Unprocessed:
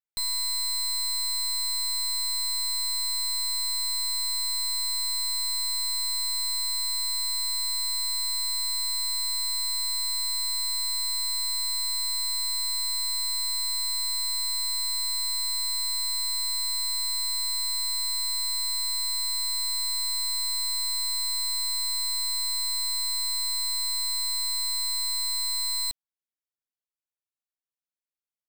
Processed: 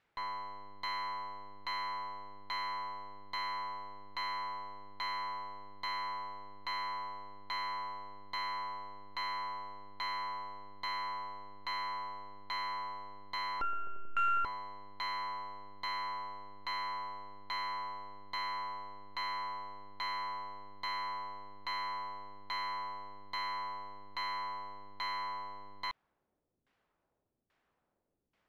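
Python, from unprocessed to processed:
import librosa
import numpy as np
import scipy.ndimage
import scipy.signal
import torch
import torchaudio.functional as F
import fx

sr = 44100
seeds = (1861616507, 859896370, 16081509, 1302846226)

y = fx.sample_sort(x, sr, block=32, at=(13.61, 14.45))
y = fx.fold_sine(y, sr, drive_db=17, ceiling_db=-27.0)
y = fx.filter_lfo_lowpass(y, sr, shape='saw_down', hz=1.2, low_hz=280.0, high_hz=2400.0, q=0.89)
y = y * 10.0 ** (4.0 / 20.0)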